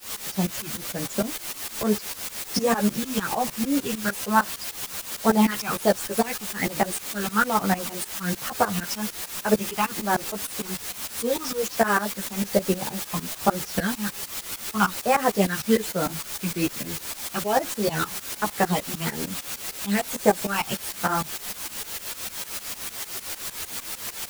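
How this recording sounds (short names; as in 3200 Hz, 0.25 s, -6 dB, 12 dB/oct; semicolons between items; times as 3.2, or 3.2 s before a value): phasing stages 8, 1.2 Hz, lowest notch 530–4700 Hz; a quantiser's noise floor 6-bit, dither triangular; tremolo saw up 6.6 Hz, depth 95%; a shimmering, thickened sound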